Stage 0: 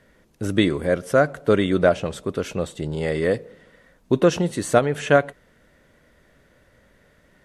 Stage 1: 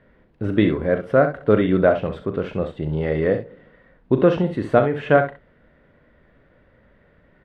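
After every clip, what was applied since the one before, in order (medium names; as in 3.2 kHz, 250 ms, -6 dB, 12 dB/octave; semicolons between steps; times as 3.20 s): distance through air 430 m; early reflections 38 ms -11 dB, 65 ms -10 dB; trim +2 dB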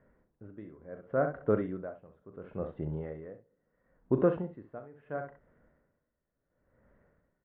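Chebyshev low-pass 1.3 kHz, order 2; logarithmic tremolo 0.72 Hz, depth 21 dB; trim -8.5 dB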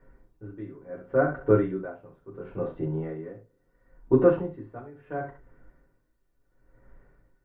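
reverberation RT60 0.15 s, pre-delay 3 ms, DRR -3 dB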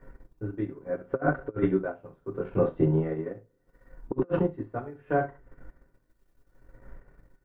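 compressor with a negative ratio -27 dBFS, ratio -0.5; transient shaper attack +3 dB, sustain -8 dB; trim +2 dB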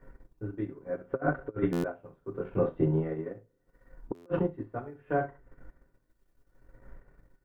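buffer glitch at 1.72/4.14 s, samples 512, times 9; trim -3 dB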